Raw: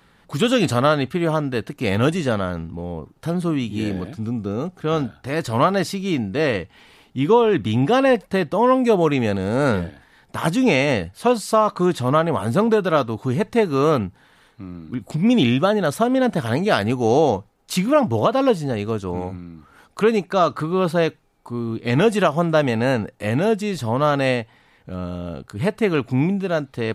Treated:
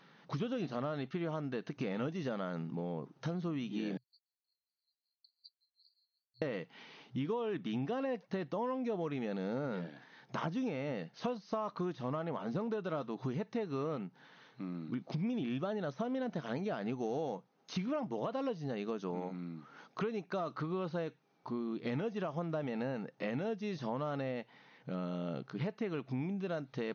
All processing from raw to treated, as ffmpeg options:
ffmpeg -i in.wav -filter_complex "[0:a]asettb=1/sr,asplit=3[link_01][link_02][link_03];[link_01]atrim=end=3.974[link_04];[link_02]atrim=start=3.97:end=6.42,asetpts=PTS-STARTPTS,afade=type=in:duration=0.004:curve=qsin,afade=type=out:start_time=2.446:duration=0.004:curve=qsin,acompressor=threshold=-33dB:ratio=8:attack=3.2:release=140:knee=1:detection=peak,asuperpass=centerf=4400:order=12:qfactor=6.5,aeval=exprs='val(0)*pow(10,-24*(0.5-0.5*cos(2*PI*5.4*n/s))/20)':channel_layout=same[link_05];[link_03]atrim=start=6.416[link_06];[link_04][link_05]acrossfade=duration=0.004:curve1=hsin:curve2=qsin[link_07];[link_07][link_06]acrossfade=duration=0.004:curve1=qsin:curve2=hsin,deesser=0.85,afftfilt=real='re*between(b*sr/4096,120,6500)':imag='im*between(b*sr/4096,120,6500)':win_size=4096:overlap=0.75,acompressor=threshold=-29dB:ratio=6,volume=-5.5dB" out.wav

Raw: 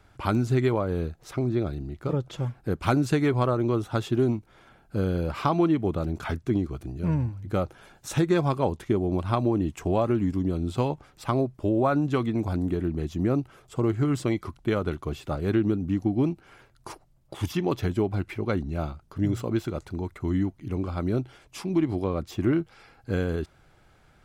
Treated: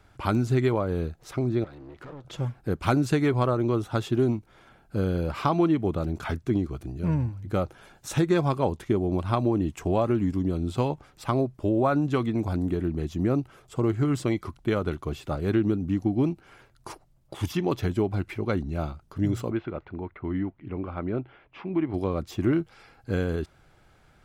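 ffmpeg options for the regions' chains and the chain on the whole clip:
ffmpeg -i in.wav -filter_complex "[0:a]asettb=1/sr,asplit=3[link_01][link_02][link_03];[link_01]atrim=end=1.644[link_04];[link_02]atrim=start=1.64:end=2.25,asetpts=PTS-STARTPTS,afade=type=in:duration=0.004:curve=qsin,afade=type=out:start_time=0.606:duration=0.004:curve=qsin,acompressor=threshold=-40dB:ratio=10:attack=3.2:release=140:knee=1:detection=peak,aeval=exprs='clip(val(0),-1,0.00251)':channel_layout=same,asplit=2[link_05][link_06];[link_06]highpass=frequency=720:poles=1,volume=23dB,asoftclip=type=tanh:threshold=-30dB[link_07];[link_05][link_07]amix=inputs=2:normalize=0,lowpass=frequency=1400:poles=1,volume=-6dB[link_08];[link_03]atrim=start=2.246[link_09];[link_04][link_08]acrossfade=duration=0.004:curve1=hsin:curve2=qsin[link_10];[link_10][link_09]acrossfade=duration=0.004:curve1=qsin:curve2=hsin,asettb=1/sr,asplit=3[link_11][link_12][link_13];[link_11]atrim=end=19.514[link_14];[link_12]atrim=start=19.51:end=21.94,asetpts=PTS-STARTPTS,afade=type=in:duration=0.004:curve=qsin,afade=type=out:start_time=2.426:duration=0.004:curve=qsin,lowpass=frequency=2700:width=0.5412,lowpass=frequency=2700:width=1.3066,lowshelf=frequency=220:gain=-7[link_15];[link_13]atrim=start=21.936[link_16];[link_14][link_15]acrossfade=duration=0.004:curve1=hsin:curve2=qsin[link_17];[link_17][link_16]acrossfade=duration=0.004:curve1=qsin:curve2=hsin" out.wav

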